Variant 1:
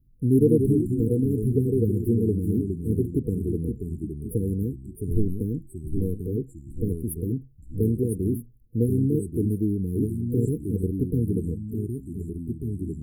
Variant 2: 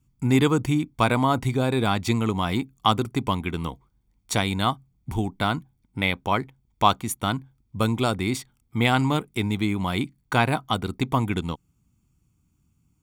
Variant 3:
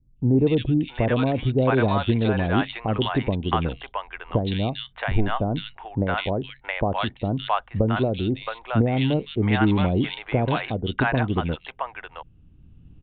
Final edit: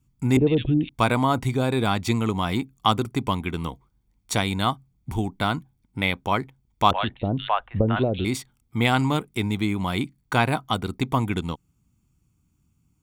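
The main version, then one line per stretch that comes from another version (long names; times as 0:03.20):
2
0:00.37–0:00.89: punch in from 3
0:06.91–0:08.25: punch in from 3
not used: 1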